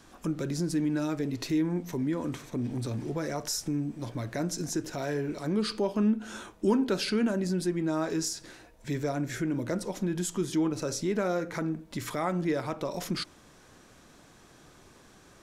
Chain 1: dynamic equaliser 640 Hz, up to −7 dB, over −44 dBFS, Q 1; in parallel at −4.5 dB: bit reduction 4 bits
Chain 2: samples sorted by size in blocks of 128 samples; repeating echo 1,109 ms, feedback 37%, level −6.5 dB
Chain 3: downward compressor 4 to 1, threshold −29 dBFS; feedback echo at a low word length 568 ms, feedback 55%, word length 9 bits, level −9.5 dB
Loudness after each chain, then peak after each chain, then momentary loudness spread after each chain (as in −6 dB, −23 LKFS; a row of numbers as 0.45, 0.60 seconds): −31.0, −29.0, −33.5 LKFS; −13.0, −12.5, −19.0 dBFS; 11, 10, 11 LU